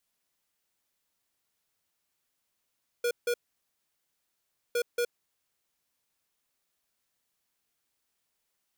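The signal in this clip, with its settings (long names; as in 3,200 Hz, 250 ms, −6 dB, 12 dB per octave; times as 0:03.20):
beeps in groups square 480 Hz, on 0.07 s, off 0.16 s, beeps 2, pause 1.41 s, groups 2, −27.5 dBFS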